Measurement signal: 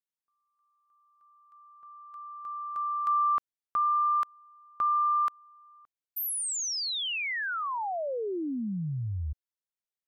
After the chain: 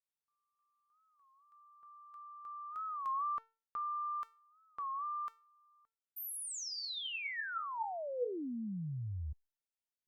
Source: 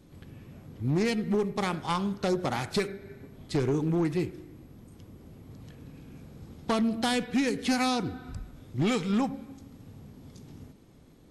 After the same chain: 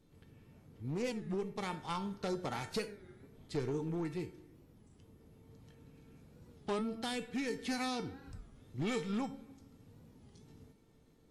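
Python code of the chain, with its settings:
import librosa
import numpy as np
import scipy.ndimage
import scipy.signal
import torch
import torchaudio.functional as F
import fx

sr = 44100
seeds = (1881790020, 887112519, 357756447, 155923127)

y = fx.rider(x, sr, range_db=3, speed_s=2.0)
y = fx.comb_fb(y, sr, f0_hz=450.0, decay_s=0.32, harmonics='all', damping=0.0, mix_pct=80)
y = fx.record_warp(y, sr, rpm=33.33, depth_cents=160.0)
y = F.gain(torch.from_numpy(y), 2.5).numpy()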